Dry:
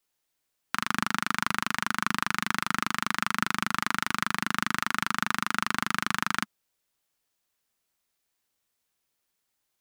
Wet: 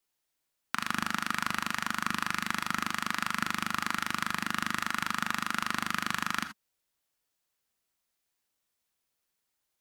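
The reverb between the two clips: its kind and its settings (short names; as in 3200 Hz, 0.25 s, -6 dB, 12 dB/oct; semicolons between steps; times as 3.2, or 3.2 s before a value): non-linear reverb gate 0.1 s rising, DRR 9.5 dB; gain -3 dB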